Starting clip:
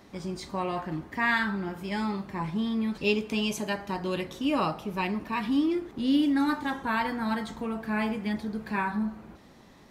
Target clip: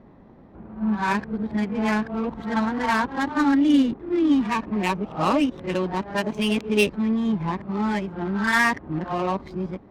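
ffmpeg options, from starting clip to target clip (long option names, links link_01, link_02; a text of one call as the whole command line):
ffmpeg -i in.wav -af "areverse,adynamicsmooth=sensitivity=5:basefreq=950,volume=6dB" out.wav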